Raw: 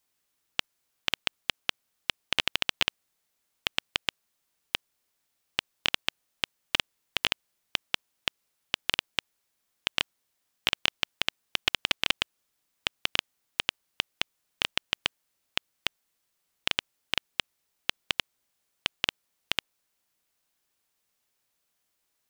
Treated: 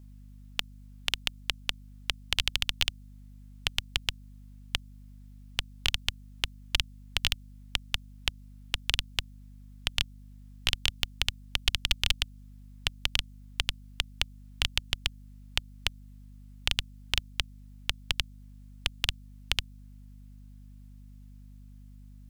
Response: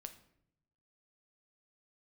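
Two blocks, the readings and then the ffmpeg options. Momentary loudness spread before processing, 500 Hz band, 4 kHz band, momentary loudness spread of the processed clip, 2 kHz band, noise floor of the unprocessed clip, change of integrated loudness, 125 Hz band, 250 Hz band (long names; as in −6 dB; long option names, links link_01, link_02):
7 LU, −6.5 dB, −0.5 dB, 7 LU, −2.5 dB, −78 dBFS, −0.5 dB, +11.0 dB, −2.5 dB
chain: -filter_complex "[0:a]asubboost=boost=9:cutoff=75,acrossover=split=160|3000[link_01][link_02][link_03];[link_02]acompressor=threshold=-39dB:ratio=4[link_04];[link_01][link_04][link_03]amix=inputs=3:normalize=0,aeval=exprs='val(0)+0.00282*(sin(2*PI*50*n/s)+sin(2*PI*2*50*n/s)/2+sin(2*PI*3*50*n/s)/3+sin(2*PI*4*50*n/s)/4+sin(2*PI*5*50*n/s)/5)':channel_layout=same,volume=3dB"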